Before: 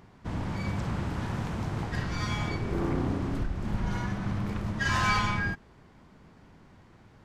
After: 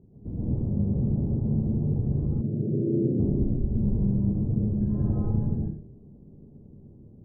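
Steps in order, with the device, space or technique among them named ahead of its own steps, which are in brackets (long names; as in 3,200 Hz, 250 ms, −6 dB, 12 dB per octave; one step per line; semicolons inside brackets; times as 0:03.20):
next room (low-pass filter 430 Hz 24 dB per octave; convolution reverb RT60 0.45 s, pre-delay 112 ms, DRR −6 dB)
0:02.41–0:03.20: Chebyshev band-pass filter 110–620 Hz, order 4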